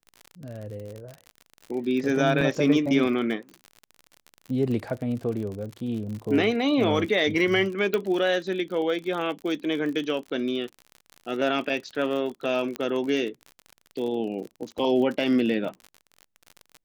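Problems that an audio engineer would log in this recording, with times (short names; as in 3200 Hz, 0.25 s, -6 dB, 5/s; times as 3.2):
crackle 53/s -32 dBFS
2.41 gap 4.1 ms
4.84 gap 2.7 ms
7.94 pop -12 dBFS
12.76 pop -16 dBFS
14.78–14.79 gap 5 ms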